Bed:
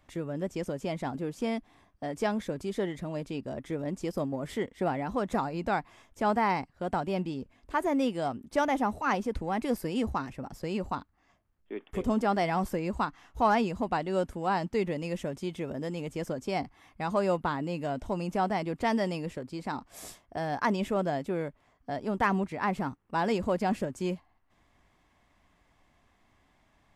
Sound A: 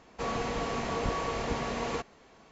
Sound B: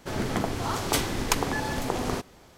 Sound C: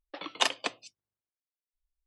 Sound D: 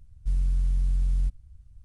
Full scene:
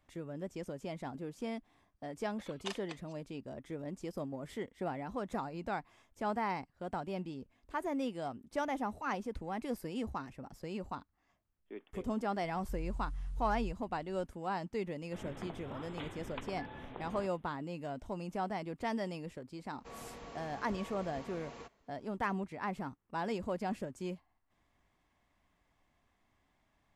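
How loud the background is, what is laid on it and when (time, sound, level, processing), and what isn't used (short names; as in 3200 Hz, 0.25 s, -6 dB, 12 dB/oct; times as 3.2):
bed -8.5 dB
2.25 add C -16 dB
12.43 add D -11 dB + limiter -24.5 dBFS
15.06 add B -18 dB + downsampling 8000 Hz
19.66 add A -16.5 dB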